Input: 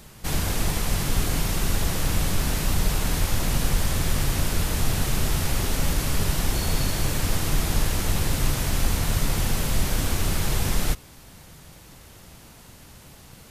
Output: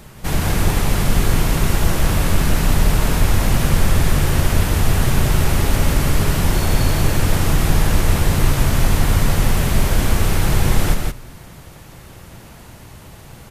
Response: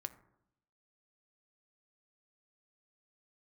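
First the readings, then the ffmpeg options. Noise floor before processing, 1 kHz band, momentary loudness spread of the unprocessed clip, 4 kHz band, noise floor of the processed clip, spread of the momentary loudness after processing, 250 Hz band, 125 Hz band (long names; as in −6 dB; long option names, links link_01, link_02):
−48 dBFS, +8.0 dB, 1 LU, +3.5 dB, −41 dBFS, 1 LU, +8.0 dB, +9.0 dB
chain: -filter_complex "[0:a]aecho=1:1:170:0.631,asplit=2[link_01][link_02];[1:a]atrim=start_sample=2205,lowpass=3200[link_03];[link_02][link_03]afir=irnorm=-1:irlink=0,volume=0.5dB[link_04];[link_01][link_04]amix=inputs=2:normalize=0,volume=2dB"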